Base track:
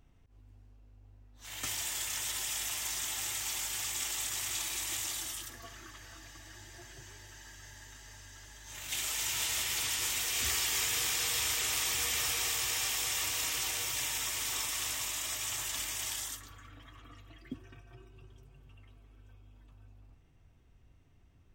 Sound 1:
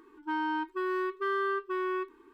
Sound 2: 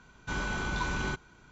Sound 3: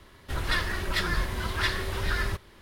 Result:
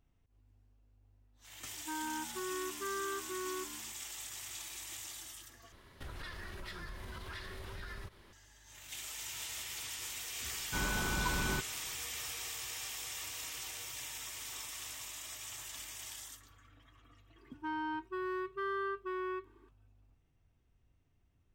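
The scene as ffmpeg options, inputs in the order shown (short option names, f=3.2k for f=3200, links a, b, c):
-filter_complex "[1:a]asplit=2[a][b];[0:a]volume=-9.5dB[c];[a]asplit=4[d][e][f][g];[e]adelay=149,afreqshift=-73,volume=-13dB[h];[f]adelay=298,afreqshift=-146,volume=-22.1dB[i];[g]adelay=447,afreqshift=-219,volume=-31.2dB[j];[d][h][i][j]amix=inputs=4:normalize=0[k];[3:a]acompressor=threshold=-36dB:ratio=6:attack=3.2:release=140:knee=1:detection=peak[l];[c]asplit=2[m][n];[m]atrim=end=5.724[o];[l]atrim=end=2.61,asetpts=PTS-STARTPTS,volume=-6dB[p];[n]atrim=start=8.326[q];[k]atrim=end=2.33,asetpts=PTS-STARTPTS,volume=-9dB,afade=t=in:d=0.004:c=hsin,afade=t=out:st=2.326:d=0.004:c=hsin,adelay=1600[r];[2:a]atrim=end=1.51,asetpts=PTS-STARTPTS,volume=-2.5dB,afade=t=in:d=0.004:c=hsin,afade=t=out:st=1.506:d=0.004:c=hsin,adelay=10450[s];[b]atrim=end=2.33,asetpts=PTS-STARTPTS,volume=-6.5dB,afade=t=in:d=0.004:c=hsin,afade=t=out:st=2.326:d=0.004:c=hsin,adelay=17360[t];[o][p]acrossfade=d=0.004:c1=hsin:c2=hsin[u];[u][q]acrossfade=d=0.004:c1=hsin:c2=hsin[v];[v][r][s][t]amix=inputs=4:normalize=0"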